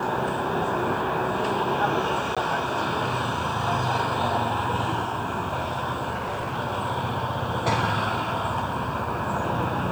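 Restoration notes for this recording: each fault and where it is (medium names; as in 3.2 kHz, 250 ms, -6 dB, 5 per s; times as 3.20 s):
2.35–2.37 s: dropout 16 ms
6.14–6.58 s: clipped -25 dBFS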